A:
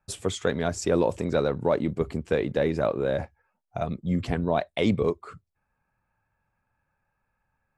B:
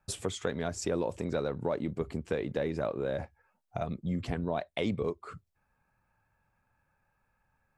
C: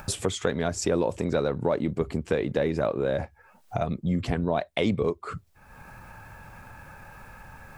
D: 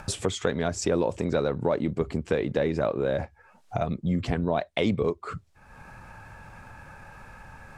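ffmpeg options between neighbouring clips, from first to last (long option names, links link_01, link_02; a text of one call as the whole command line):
ffmpeg -i in.wav -af "acompressor=threshold=-37dB:ratio=2,volume=1.5dB" out.wav
ffmpeg -i in.wav -af "acompressor=mode=upward:threshold=-33dB:ratio=2.5,volume=6.5dB" out.wav
ffmpeg -i in.wav -af "lowpass=9100" out.wav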